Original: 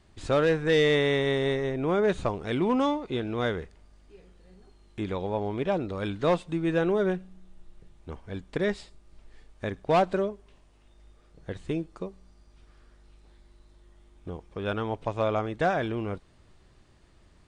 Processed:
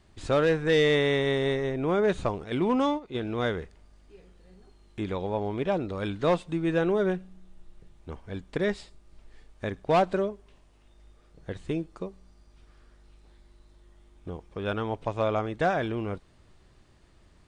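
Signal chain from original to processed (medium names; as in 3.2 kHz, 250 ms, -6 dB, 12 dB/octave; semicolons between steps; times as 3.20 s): 2.44–3.21 s: gate -28 dBFS, range -8 dB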